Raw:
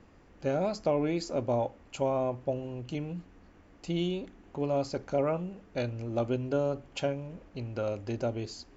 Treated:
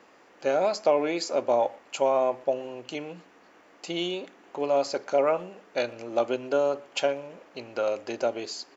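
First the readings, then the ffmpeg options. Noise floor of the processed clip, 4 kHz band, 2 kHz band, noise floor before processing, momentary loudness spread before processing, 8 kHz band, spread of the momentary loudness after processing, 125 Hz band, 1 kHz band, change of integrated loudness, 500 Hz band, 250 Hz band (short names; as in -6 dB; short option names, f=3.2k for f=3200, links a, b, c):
-57 dBFS, +8.0 dB, +8.0 dB, -58 dBFS, 9 LU, n/a, 13 LU, -13.0 dB, +7.5 dB, +5.0 dB, +6.0 dB, -1.5 dB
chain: -filter_complex "[0:a]highpass=480,asplit=2[a][b];[b]adelay=120,highpass=300,lowpass=3.4k,asoftclip=type=hard:threshold=-28dB,volume=-23dB[c];[a][c]amix=inputs=2:normalize=0,volume=8dB"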